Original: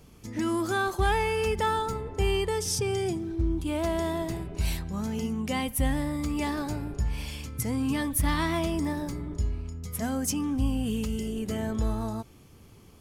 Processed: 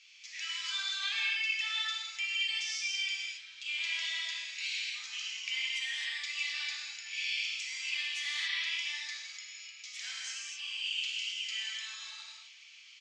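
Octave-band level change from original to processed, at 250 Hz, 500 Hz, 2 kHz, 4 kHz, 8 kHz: under -40 dB, under -40 dB, +2.5 dB, +7.0 dB, -6.0 dB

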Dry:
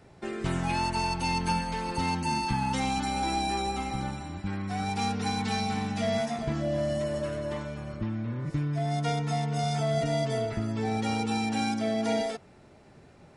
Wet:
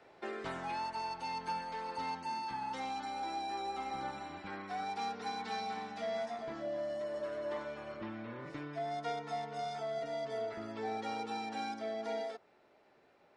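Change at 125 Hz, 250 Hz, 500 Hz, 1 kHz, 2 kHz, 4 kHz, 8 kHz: -23.5, -16.0, -7.5, -7.0, -9.0, -11.5, -17.0 dB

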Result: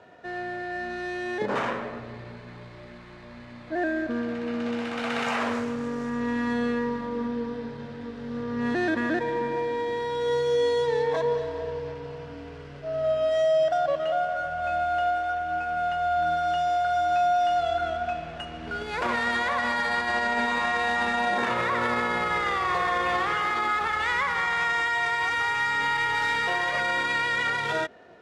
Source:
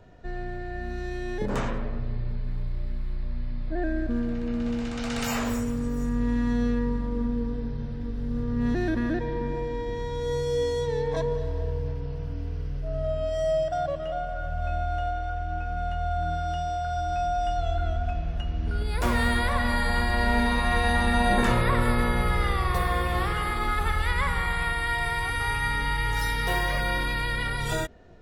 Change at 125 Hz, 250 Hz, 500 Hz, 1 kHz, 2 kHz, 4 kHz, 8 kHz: -13.0 dB, -2.5 dB, +3.5 dB, +4.0 dB, +3.5 dB, +1.0 dB, n/a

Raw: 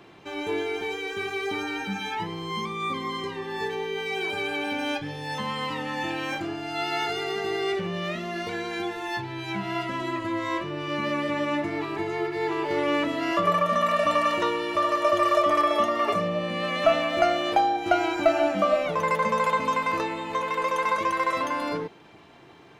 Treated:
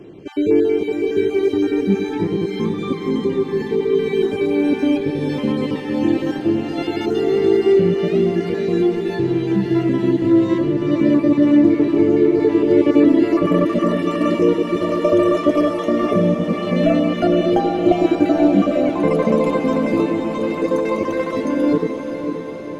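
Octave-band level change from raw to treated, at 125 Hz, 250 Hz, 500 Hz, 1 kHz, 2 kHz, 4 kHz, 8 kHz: +13.0 dB, +16.0 dB, +10.0 dB, -2.5 dB, -2.0 dB, -1.5 dB, n/a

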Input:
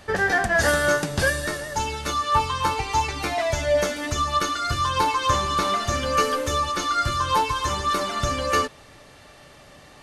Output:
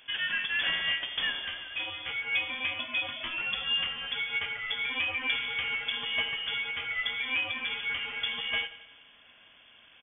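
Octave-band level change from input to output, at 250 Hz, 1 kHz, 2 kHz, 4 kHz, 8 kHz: -19.0 dB, -21.5 dB, -4.0 dB, -0.5 dB, under -40 dB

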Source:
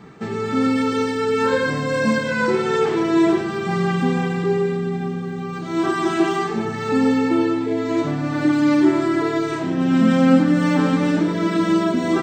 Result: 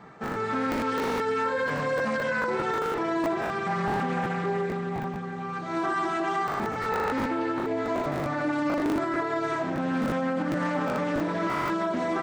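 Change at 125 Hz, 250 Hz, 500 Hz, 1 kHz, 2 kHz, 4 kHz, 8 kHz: -10.5, -12.0, -7.5, -2.5, -5.0, -9.5, -9.0 dB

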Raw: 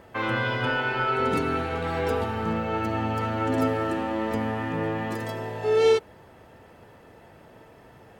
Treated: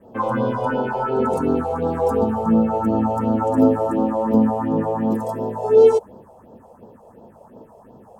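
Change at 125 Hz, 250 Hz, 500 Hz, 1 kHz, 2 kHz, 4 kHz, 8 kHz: +2.5 dB, +10.0 dB, +7.5 dB, +5.0 dB, -7.5 dB, under -10 dB, n/a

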